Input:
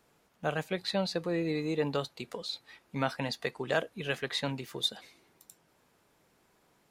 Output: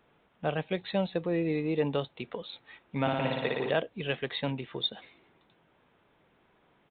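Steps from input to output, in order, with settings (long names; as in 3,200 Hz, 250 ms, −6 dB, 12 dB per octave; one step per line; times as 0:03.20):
downsampling to 8,000 Hz
dynamic equaliser 1,400 Hz, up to −6 dB, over −48 dBFS, Q 1.4
0:03.01–0:03.70: flutter between parallel walls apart 9.9 metres, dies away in 1.5 s
level +2.5 dB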